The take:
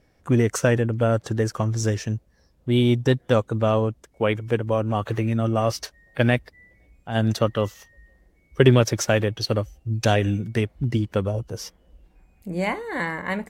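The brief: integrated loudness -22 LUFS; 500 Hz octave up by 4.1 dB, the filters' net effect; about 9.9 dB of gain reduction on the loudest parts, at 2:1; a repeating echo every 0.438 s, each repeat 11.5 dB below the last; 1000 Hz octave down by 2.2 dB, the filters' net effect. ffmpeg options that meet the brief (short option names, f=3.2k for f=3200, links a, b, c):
-af "equalizer=f=500:t=o:g=6.5,equalizer=f=1k:t=o:g=-6.5,acompressor=threshold=-26dB:ratio=2,aecho=1:1:438|876|1314:0.266|0.0718|0.0194,volume=5.5dB"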